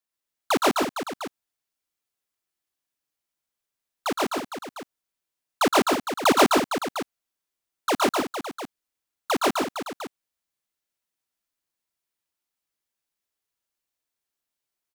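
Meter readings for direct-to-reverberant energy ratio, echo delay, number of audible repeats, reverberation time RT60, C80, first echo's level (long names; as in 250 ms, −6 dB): no reverb audible, 116 ms, 3, no reverb audible, no reverb audible, −3.5 dB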